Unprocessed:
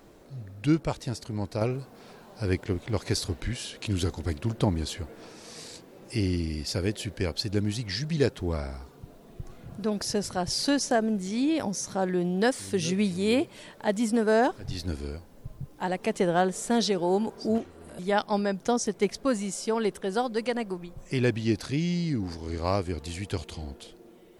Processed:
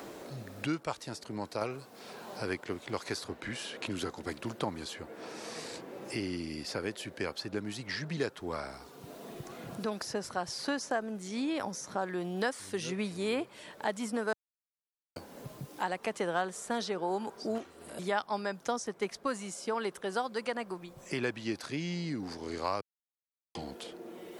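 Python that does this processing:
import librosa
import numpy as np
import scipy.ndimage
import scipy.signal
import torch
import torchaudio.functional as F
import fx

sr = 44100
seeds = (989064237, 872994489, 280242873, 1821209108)

y = fx.edit(x, sr, fx.silence(start_s=14.33, length_s=0.83),
    fx.silence(start_s=22.81, length_s=0.74), tone=tone)
y = fx.highpass(y, sr, hz=330.0, slope=6)
y = fx.dynamic_eq(y, sr, hz=1200.0, q=1.1, threshold_db=-46.0, ratio=4.0, max_db=8)
y = fx.band_squash(y, sr, depth_pct=70)
y = F.gain(torch.from_numpy(y), -6.5).numpy()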